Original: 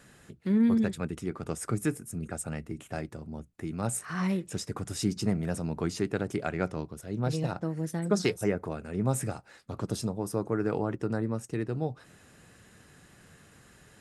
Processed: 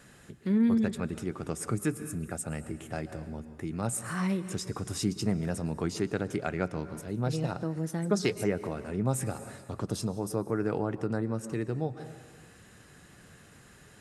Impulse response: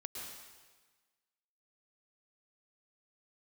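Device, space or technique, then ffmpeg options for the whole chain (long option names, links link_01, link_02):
ducked reverb: -filter_complex "[0:a]asplit=3[link_01][link_02][link_03];[1:a]atrim=start_sample=2205[link_04];[link_02][link_04]afir=irnorm=-1:irlink=0[link_05];[link_03]apad=whole_len=617509[link_06];[link_05][link_06]sidechaincompress=threshold=-35dB:ratio=8:attack=7.3:release=165,volume=-4dB[link_07];[link_01][link_07]amix=inputs=2:normalize=0,volume=-1.5dB"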